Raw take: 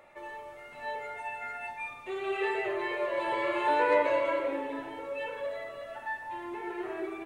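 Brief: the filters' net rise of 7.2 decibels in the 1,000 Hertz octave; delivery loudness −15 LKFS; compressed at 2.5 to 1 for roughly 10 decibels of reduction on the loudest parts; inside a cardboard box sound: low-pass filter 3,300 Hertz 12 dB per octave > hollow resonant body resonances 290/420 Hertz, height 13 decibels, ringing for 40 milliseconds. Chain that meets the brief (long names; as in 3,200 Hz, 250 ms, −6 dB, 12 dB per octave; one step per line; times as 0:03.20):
parametric band 1,000 Hz +8 dB
downward compressor 2.5 to 1, threshold −32 dBFS
low-pass filter 3,300 Hz 12 dB per octave
hollow resonant body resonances 290/420 Hz, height 13 dB, ringing for 40 ms
level +15.5 dB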